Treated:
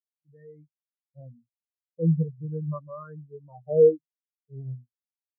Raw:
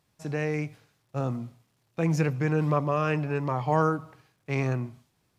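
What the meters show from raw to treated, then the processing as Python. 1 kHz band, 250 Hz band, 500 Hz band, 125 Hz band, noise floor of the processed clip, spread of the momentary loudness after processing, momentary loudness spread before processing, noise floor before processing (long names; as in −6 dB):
−18.0 dB, −3.5 dB, +4.5 dB, −3.0 dB, below −85 dBFS, 22 LU, 13 LU, −72 dBFS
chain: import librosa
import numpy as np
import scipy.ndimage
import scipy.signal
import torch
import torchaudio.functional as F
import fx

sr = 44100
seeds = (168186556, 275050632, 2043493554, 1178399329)

y = fx.filter_lfo_lowpass(x, sr, shape='sine', hz=0.43, low_hz=400.0, high_hz=1800.0, q=1.9)
y = fx.spectral_expand(y, sr, expansion=4.0)
y = y * 10.0 ** (1.5 / 20.0)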